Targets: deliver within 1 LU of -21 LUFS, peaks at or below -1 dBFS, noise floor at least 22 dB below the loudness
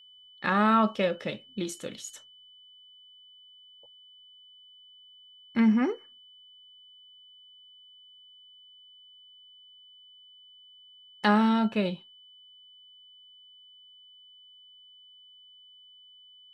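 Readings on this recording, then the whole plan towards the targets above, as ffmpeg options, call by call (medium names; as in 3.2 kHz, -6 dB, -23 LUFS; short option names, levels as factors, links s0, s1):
steady tone 3 kHz; tone level -52 dBFS; loudness -27.0 LUFS; peak level -11.0 dBFS; loudness target -21.0 LUFS
-> -af "bandreject=f=3000:w=30"
-af "volume=2"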